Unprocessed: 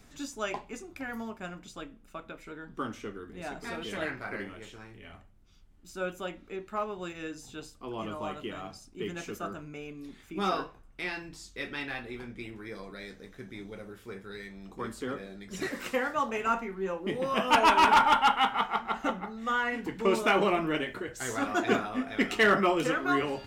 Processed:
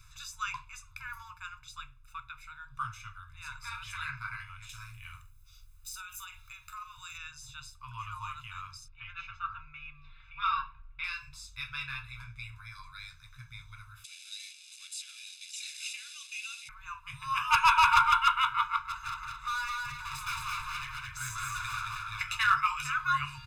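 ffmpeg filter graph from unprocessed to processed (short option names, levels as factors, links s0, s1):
-filter_complex "[0:a]asettb=1/sr,asplit=3[s0][s1][s2];[s0]atrim=end=4.694[s3];[s1]atrim=start=4.69:end=7.18,asetpts=PTS-STARTPTS,afade=t=in:d=0.004:c=qsin,afade=t=out:st=2.486:d=0.004:c=qsin,aemphasis=mode=production:type=75kf,acompressor=threshold=0.0126:ratio=12:attack=3.2:release=140:knee=1:detection=peak,asplit=2[s4][s5];[s5]adelay=45,volume=0.282[s6];[s4][s6]amix=inputs=2:normalize=0,atrim=end_sample=109809[s7];[s2]atrim=start=7.176[s8];[s3][s7]acrossfade=d=0.004:c1=hsin:c2=qsin[s9];[s9][s8]acrossfade=d=0.004:c1=qsin:c2=hsin,asettb=1/sr,asplit=3[s10][s11][s12];[s10]atrim=end=8.884[s13];[s11]atrim=start=8.88:end=11.04,asetpts=PTS-STARTPTS,afade=t=in:d=0.004:c=qsin,afade=t=out:st=2.156:d=0.004:c=qsin,lowpass=f=3400:w=0.5412,lowpass=f=3400:w=1.3066,aecho=1:1:4.4:0.55,atrim=end_sample=95256[s14];[s12]atrim=start=11.036[s15];[s13][s14]acrossfade=d=0.004:c1=hsin:c2=qsin[s16];[s16][s15]acrossfade=d=0.004:c1=qsin:c2=hsin,asettb=1/sr,asplit=3[s17][s18][s19];[s17]atrim=end=14.044[s20];[s18]atrim=start=14.04:end=16.69,asetpts=PTS-STARTPTS,afade=t=in:d=0.004:c=qsin,afade=t=out:st=2.646:d=0.004:c=qsin,aeval=exprs='val(0)+0.5*0.02*sgn(val(0))':c=same,asuperpass=centerf=5500:order=8:qfactor=0.72[s21];[s19]atrim=start=16.686[s22];[s20][s21]acrossfade=d=0.004:c1=hsin:c2=qsin[s23];[s23][s22]acrossfade=d=0.004:c1=qsin:c2=hsin,asettb=1/sr,asplit=3[s24][s25][s26];[s24]atrim=end=18.814[s27];[s25]atrim=start=18.81:end=22.21,asetpts=PTS-STARTPTS,afade=t=in:d=0.004:c=qsin,afade=t=out:st=3.396:d=0.004:c=qsin,volume=42.2,asoftclip=hard,volume=0.0237,aecho=1:1:220|440|660|880:0.708|0.234|0.0771|0.0254,atrim=end_sample=149940[s28];[s26]atrim=start=22.206[s29];[s27][s28]acrossfade=d=0.004:c1=hsin:c2=qsin[s30];[s30][s29]acrossfade=d=0.004:c1=qsin:c2=hsin,afftfilt=real='re*(1-between(b*sr/4096,150,900))':imag='im*(1-between(b*sr/4096,150,900))':win_size=4096:overlap=0.75,equalizer=f=650:t=o:w=0.44:g=-12.5,aecho=1:1:0.8:0.97,volume=0.75"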